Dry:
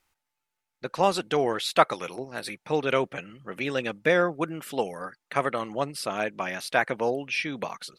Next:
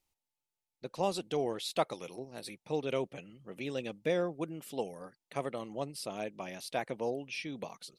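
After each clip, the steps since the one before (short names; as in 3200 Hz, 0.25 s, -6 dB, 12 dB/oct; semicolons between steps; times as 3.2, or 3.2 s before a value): bell 1500 Hz -13 dB 1.2 oct; gain -6.5 dB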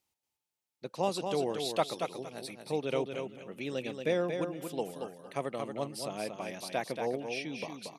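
HPF 93 Hz; on a send: feedback echo 0.231 s, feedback 21%, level -6 dB; on the sum: gain +1 dB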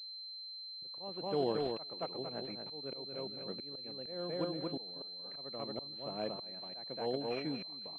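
air absorption 140 m; auto swell 0.573 s; pulse-width modulation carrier 4100 Hz; gain +1.5 dB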